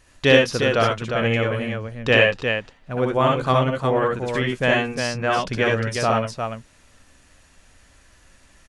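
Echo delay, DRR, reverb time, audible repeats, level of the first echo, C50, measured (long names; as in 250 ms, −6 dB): 61 ms, no reverb audible, no reverb audible, 3, −3.5 dB, no reverb audible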